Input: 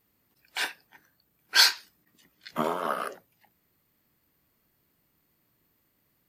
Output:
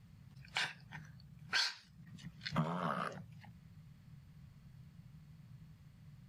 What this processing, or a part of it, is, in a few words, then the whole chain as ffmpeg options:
jukebox: -af "lowpass=6800,lowshelf=frequency=220:width_type=q:width=3:gain=13.5,acompressor=threshold=-40dB:ratio=4,volume=3.5dB"

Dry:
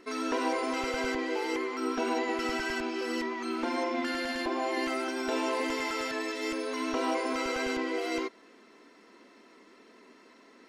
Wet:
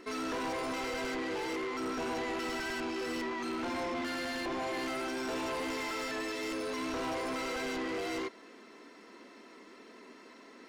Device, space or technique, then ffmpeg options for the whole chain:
saturation between pre-emphasis and de-emphasis: -af "highshelf=frequency=4600:gain=10,asoftclip=type=tanh:threshold=-35.5dB,highshelf=frequency=4600:gain=-10,volume=3dB"

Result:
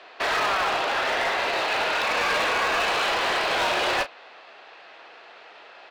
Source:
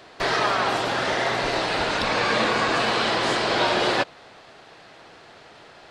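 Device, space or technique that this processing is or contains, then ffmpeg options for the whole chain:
megaphone: -filter_complex "[0:a]highpass=530,lowpass=3800,equalizer=frequency=2600:width_type=o:width=0.25:gain=5,asoftclip=type=hard:threshold=-22dB,asplit=2[link_01][link_02];[link_02]adelay=33,volume=-11.5dB[link_03];[link_01][link_03]amix=inputs=2:normalize=0,volume=1.5dB"

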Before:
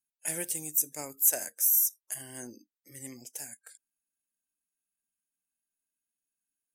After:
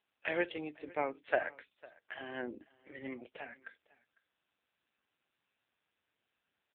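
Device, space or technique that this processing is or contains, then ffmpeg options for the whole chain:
satellite phone: -af "highpass=370,lowpass=3300,aecho=1:1:502:0.0708,volume=9.5dB" -ar 8000 -c:a libopencore_amrnb -b:a 6700

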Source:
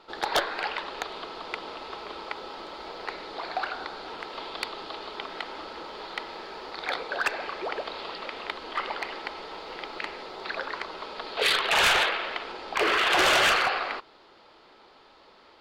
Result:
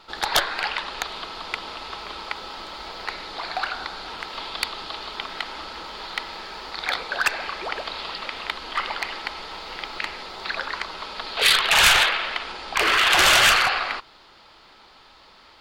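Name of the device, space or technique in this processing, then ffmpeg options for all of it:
smiley-face EQ: -af "lowshelf=frequency=97:gain=6.5,equalizer=frequency=420:width_type=o:width=1.6:gain=-8.5,highshelf=frequency=6000:gain=7.5,volume=5.5dB"

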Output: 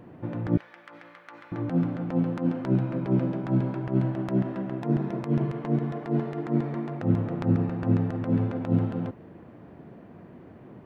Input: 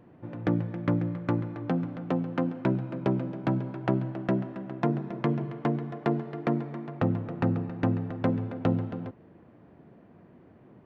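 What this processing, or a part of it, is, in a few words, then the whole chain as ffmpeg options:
de-esser from a sidechain: -filter_complex "[0:a]asettb=1/sr,asplit=3[link_01][link_02][link_03];[link_01]atrim=end=0.574[link_04];[link_02]atrim=start=0.57:end=1.52,asetpts=PTS-STARTPTS,afade=type=in:duration=0.004:curve=qsin,afade=type=out:start_time=0.946:duration=0.004:curve=qsin,highpass=1400[link_05];[link_03]atrim=start=1.516[link_06];[link_04][link_05]acrossfade=duration=0.004:curve1=hsin:curve2=qsin[link_07];[link_07][link_06]acrossfade=duration=0.004:curve1=qsin:curve2=hsin,asplit=2[link_08][link_09];[link_09]highpass=4000,apad=whole_len=478901[link_10];[link_08][link_10]sidechaincompress=threshold=-59dB:ratio=12:attack=0.89:release=58,volume=7dB"

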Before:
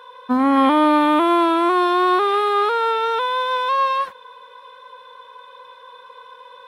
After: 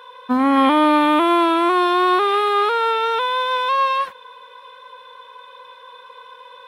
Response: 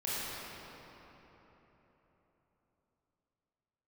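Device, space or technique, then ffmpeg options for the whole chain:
presence and air boost: -af "equalizer=frequency=2600:width_type=o:width=1:gain=4,highshelf=frequency=9100:gain=3.5"

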